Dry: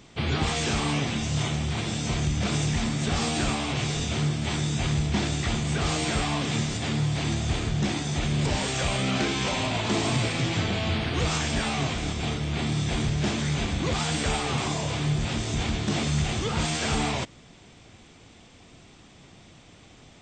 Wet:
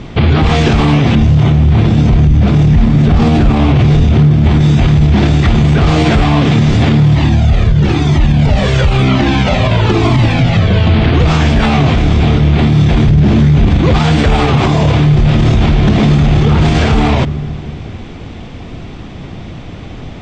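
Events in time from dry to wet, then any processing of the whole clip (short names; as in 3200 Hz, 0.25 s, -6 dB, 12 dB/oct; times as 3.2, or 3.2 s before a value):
1.15–4.61 tilt -1.5 dB/oct
7.15–10.87 cascading flanger falling 1 Hz
13.1–13.7 low shelf 350 Hz +8 dB
15.05–16.45 reverb throw, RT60 2.6 s, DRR 1 dB
whole clip: LPF 4400 Hz 12 dB/oct; tilt -2 dB/oct; maximiser +21 dB; gain -1 dB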